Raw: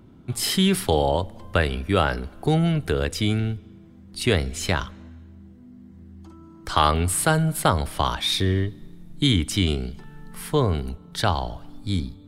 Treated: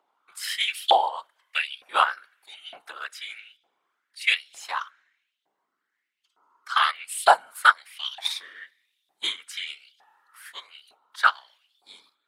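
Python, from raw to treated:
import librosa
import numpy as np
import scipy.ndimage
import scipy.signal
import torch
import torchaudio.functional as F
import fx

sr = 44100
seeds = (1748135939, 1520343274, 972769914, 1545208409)

p1 = fx.highpass(x, sr, hz=500.0, slope=6)
p2 = fx.level_steps(p1, sr, step_db=23)
p3 = p1 + F.gain(torch.from_numpy(p2), -1.0).numpy()
p4 = fx.whisperise(p3, sr, seeds[0])
p5 = fx.filter_lfo_highpass(p4, sr, shape='saw_up', hz=1.1, low_hz=730.0, high_hz=3500.0, q=4.3)
p6 = fx.upward_expand(p5, sr, threshold_db=-32.0, expansion=1.5)
y = F.gain(torch.from_numpy(p6), -2.5).numpy()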